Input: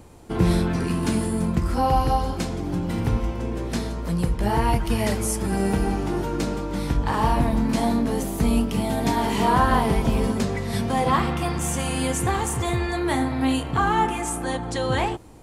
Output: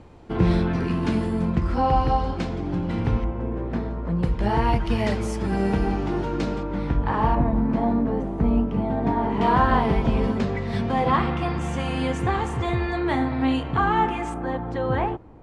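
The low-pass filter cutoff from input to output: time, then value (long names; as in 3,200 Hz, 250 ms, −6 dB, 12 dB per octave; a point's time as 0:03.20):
3,500 Hz
from 0:03.24 1,500 Hz
from 0:04.23 4,100 Hz
from 0:06.63 2,200 Hz
from 0:07.35 1,300 Hz
from 0:09.41 3,200 Hz
from 0:14.34 1,600 Hz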